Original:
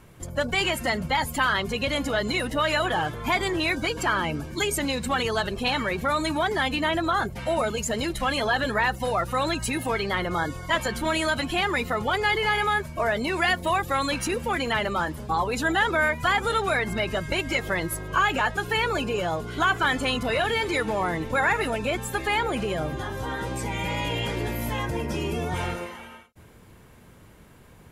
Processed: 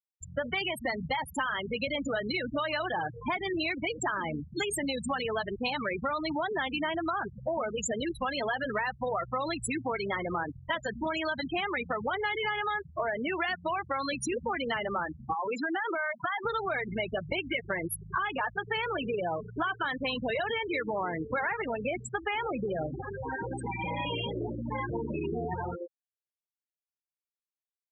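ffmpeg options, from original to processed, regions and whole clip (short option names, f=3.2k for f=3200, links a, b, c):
-filter_complex "[0:a]asettb=1/sr,asplit=3[a][b][c];[a]atrim=end=15.334[d];[b]atrim=start=15.33:end=16.45,asetpts=PTS-STARTPTS,afade=t=in:d=0.004:c=qsin,afade=t=out:st=1.116:d=0.004:c=qsin,highpass=140,acompressor=threshold=-23dB:ratio=10:attack=3.2:release=140:knee=1:detection=peak[e];[c]atrim=start=16.446[f];[d][e]acrossfade=d=0.004:c1=hsin:c2=qsin[g];[g][f]acrossfade=d=0.004:c1=qsin:c2=hsin,afftfilt=real='re*gte(hypot(re,im),0.1)':imag='im*gte(hypot(re,im),0.1)':win_size=1024:overlap=0.75,highpass=f=200:p=1,acompressor=threshold=-28dB:ratio=6"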